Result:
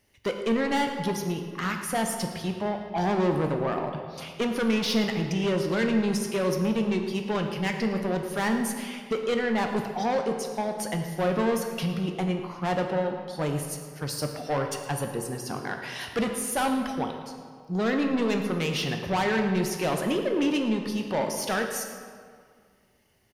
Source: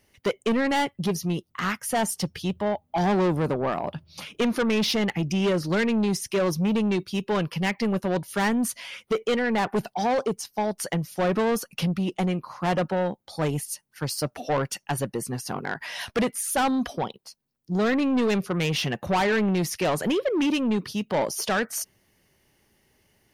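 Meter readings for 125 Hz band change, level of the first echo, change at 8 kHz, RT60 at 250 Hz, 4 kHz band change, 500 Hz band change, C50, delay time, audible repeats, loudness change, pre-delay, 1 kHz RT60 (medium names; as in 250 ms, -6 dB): -2.0 dB, -15.5 dB, -2.5 dB, 2.2 s, -2.0 dB, -1.5 dB, 5.5 dB, 112 ms, 1, -2.0 dB, 11 ms, 2.0 s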